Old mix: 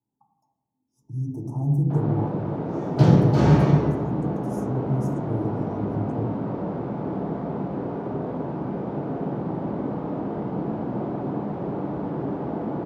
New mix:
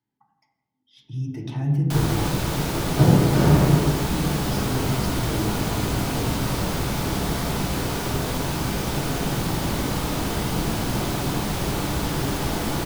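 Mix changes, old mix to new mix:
speech: remove inverse Chebyshev band-stop 1600–4500 Hz, stop band 40 dB; first sound: remove Butterworth band-pass 360 Hz, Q 0.56

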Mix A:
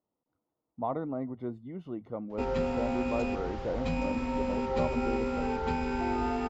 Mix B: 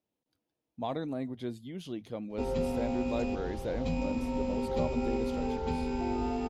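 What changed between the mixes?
speech: remove polynomial smoothing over 65 samples; master: add bell 1500 Hz -11 dB 1.3 oct

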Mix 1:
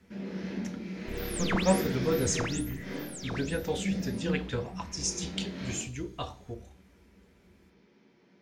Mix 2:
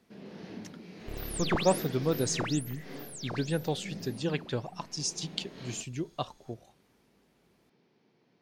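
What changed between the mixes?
speech: add resonant low shelf 110 Hz -10.5 dB, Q 3; reverb: off

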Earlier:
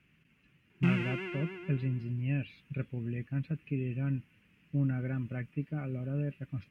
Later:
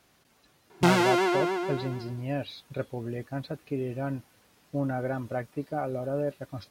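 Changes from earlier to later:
background +7.5 dB; master: remove EQ curve 110 Hz 0 dB, 160 Hz +6 dB, 760 Hz -20 dB, 2700 Hz +4 dB, 3800 Hz -20 dB

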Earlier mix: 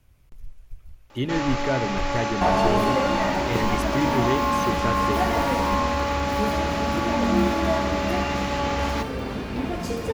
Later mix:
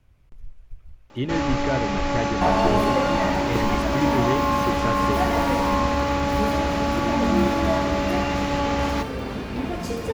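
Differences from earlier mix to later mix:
speech: add LPF 3400 Hz 6 dB/oct; first sound: remove HPF 460 Hz 6 dB/oct

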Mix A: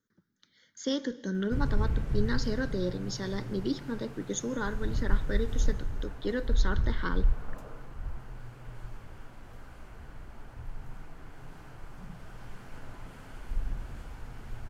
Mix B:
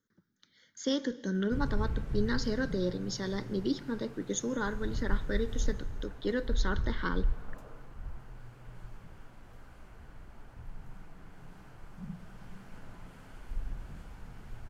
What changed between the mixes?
first sound -4.5 dB; second sound +6.5 dB

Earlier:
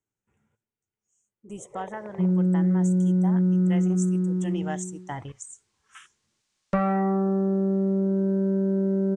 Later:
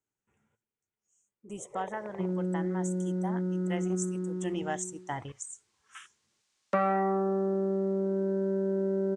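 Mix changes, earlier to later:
second sound: add HPF 220 Hz 24 dB/oct; master: add low shelf 220 Hz -6 dB

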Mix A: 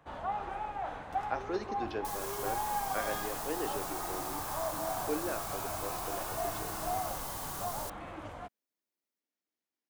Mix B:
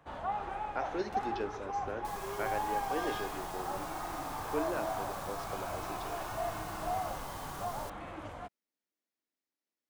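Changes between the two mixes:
speech: entry -0.55 s; second sound: add high shelf 5200 Hz -11 dB

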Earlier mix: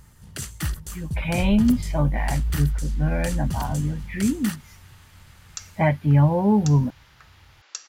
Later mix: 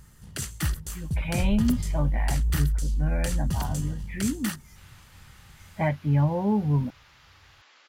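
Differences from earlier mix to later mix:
speech -5.5 dB; second sound: entry +2.60 s

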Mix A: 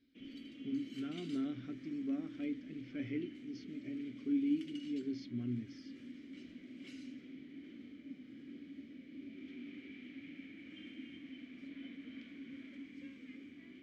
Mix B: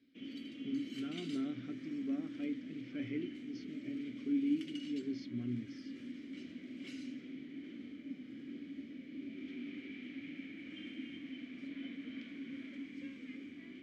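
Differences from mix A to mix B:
background +4.0 dB; master: add HPF 90 Hz

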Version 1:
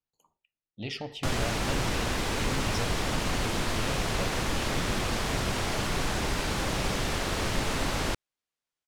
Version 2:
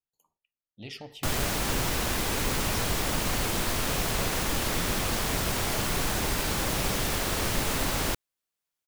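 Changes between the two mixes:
speech -6.0 dB; master: remove air absorption 52 m

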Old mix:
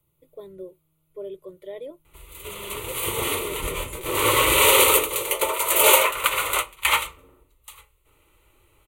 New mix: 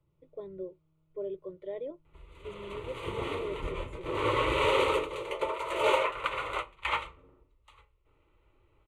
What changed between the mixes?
background -4.5 dB; master: add tape spacing loss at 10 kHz 30 dB

